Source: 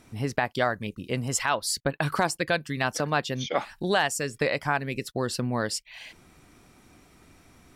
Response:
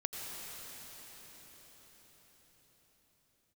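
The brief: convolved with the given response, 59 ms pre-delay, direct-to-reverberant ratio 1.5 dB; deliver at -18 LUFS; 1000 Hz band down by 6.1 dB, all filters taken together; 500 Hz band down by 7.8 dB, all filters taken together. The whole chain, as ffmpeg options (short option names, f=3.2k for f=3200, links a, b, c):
-filter_complex "[0:a]equalizer=f=500:t=o:g=-8.5,equalizer=f=1k:t=o:g=-5,asplit=2[a][b];[1:a]atrim=start_sample=2205,adelay=59[c];[b][c]afir=irnorm=-1:irlink=0,volume=-4dB[d];[a][d]amix=inputs=2:normalize=0,volume=10.5dB"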